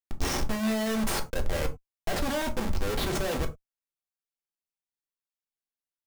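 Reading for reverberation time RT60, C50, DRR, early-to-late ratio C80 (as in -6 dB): no single decay rate, 16.0 dB, 4.0 dB, 23.5 dB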